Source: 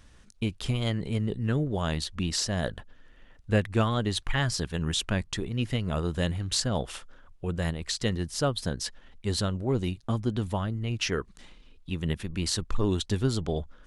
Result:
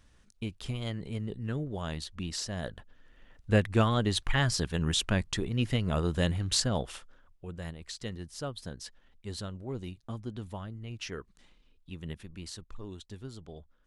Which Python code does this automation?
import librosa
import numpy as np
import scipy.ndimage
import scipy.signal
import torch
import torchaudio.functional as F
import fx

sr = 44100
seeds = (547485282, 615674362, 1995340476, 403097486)

y = fx.gain(x, sr, db=fx.line((2.69, -7.0), (3.56, 0.0), (6.6, 0.0), (7.46, -10.5), (12.15, -10.5), (12.8, -17.0)))